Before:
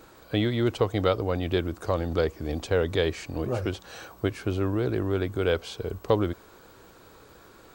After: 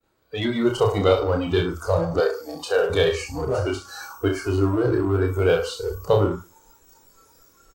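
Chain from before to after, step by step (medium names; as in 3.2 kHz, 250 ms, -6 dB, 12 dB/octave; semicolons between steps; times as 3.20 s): coarse spectral quantiser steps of 15 dB; level rider gain up to 4 dB; reverse bouncing-ball echo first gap 30 ms, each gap 1.15×, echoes 5; expander -46 dBFS; spectral noise reduction 18 dB; 2.20–2.90 s: high-pass 400 Hz 12 dB/octave; in parallel at -5.5 dB: saturation -32 dBFS, distortion -3 dB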